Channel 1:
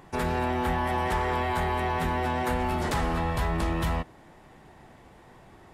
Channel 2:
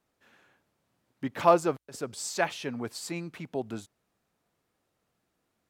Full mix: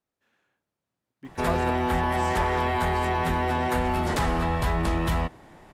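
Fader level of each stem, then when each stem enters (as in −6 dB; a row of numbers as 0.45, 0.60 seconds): +2.5, −10.0 decibels; 1.25, 0.00 seconds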